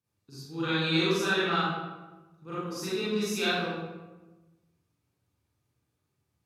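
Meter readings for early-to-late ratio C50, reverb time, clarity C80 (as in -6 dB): -3.5 dB, 1.2 s, 0.5 dB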